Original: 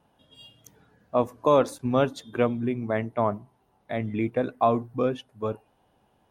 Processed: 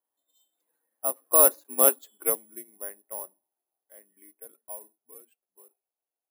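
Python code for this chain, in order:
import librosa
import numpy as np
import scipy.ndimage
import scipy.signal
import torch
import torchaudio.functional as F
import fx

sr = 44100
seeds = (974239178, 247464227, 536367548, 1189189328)

y = fx.doppler_pass(x, sr, speed_mps=33, closest_m=14.0, pass_at_s=1.78)
y = scipy.signal.sosfilt(scipy.signal.butter(4, 330.0, 'highpass', fs=sr, output='sos'), y)
y = (np.kron(scipy.signal.resample_poly(y, 1, 4), np.eye(4)[0]) * 4)[:len(y)]
y = fx.upward_expand(y, sr, threshold_db=-37.0, expansion=1.5)
y = F.gain(torch.from_numpy(y), -1.0).numpy()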